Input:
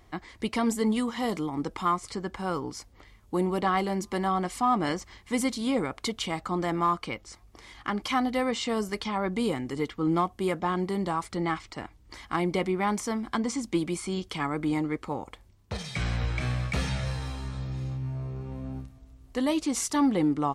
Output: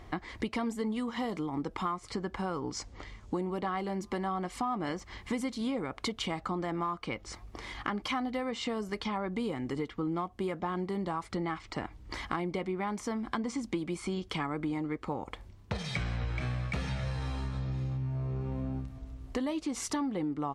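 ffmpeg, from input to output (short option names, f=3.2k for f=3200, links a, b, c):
-filter_complex "[0:a]asettb=1/sr,asplit=3[a][b][c];[a]atrim=end=2.724[d];[b]atrim=start=2.72:end=3.42,asetpts=PTS-STARTPTS,afade=t=in:d=0.004:c=qsin,afade=t=out:st=0.696:d=0.004:c=qsin,lowpass=f=7.1k:t=q:w=1.8[e];[c]atrim=start=3.416[f];[d][e]acrossfade=d=0.004:c1=hsin:c2=qsin[g];[g][f]acrossfade=d=0.004:c1=qsin:c2=hsin,lowpass=f=3.5k:p=1,acompressor=threshold=-39dB:ratio=6,volume=7.5dB"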